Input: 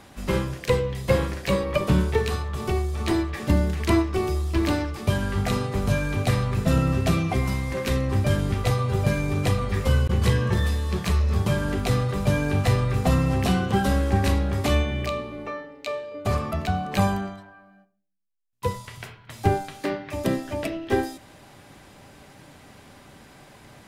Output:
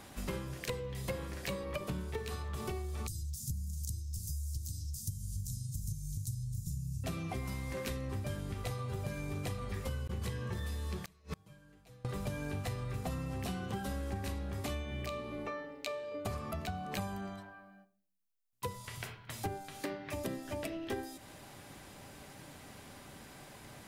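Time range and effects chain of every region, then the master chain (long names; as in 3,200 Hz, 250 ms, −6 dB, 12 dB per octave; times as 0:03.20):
0:03.07–0:07.04: elliptic band-stop filter 140–6,100 Hz, stop band 50 dB + one half of a high-frequency compander encoder only
0:11.05–0:12.05: comb filter 6.3 ms, depth 75% + gate with flip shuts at −19 dBFS, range −33 dB
whole clip: high-shelf EQ 7,300 Hz +7.5 dB; downward compressor, threshold −32 dBFS; level −4 dB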